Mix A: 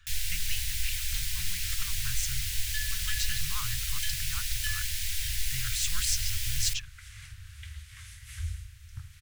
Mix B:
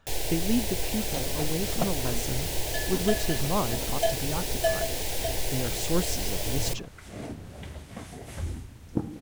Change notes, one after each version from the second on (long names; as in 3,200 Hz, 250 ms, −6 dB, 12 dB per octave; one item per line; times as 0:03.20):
speech −5.5 dB
master: remove inverse Chebyshev band-stop filter 230–650 Hz, stop band 60 dB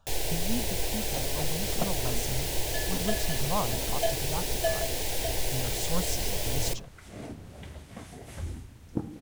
speech: add phaser with its sweep stopped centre 830 Hz, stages 4
second sound −3.0 dB